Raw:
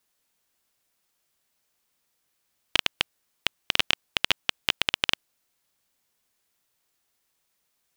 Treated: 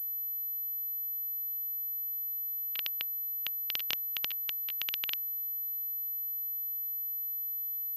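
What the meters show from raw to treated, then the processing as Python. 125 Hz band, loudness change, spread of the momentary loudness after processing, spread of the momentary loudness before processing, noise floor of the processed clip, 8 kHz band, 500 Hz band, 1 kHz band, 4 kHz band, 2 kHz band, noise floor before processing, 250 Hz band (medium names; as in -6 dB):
under -15 dB, -5.5 dB, 1 LU, 8 LU, -36 dBFS, -11.0 dB, under -15 dB, -18.0 dB, -12.5 dB, -14.5 dB, -75 dBFS, under -15 dB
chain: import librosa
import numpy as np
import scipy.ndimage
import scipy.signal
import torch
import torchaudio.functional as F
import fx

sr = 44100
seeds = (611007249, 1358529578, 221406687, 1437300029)

y = np.diff(x, prepend=0.0)
y = fx.over_compress(y, sr, threshold_db=-34.0, ratio=-0.5)
y = fx.pwm(y, sr, carrier_hz=12000.0)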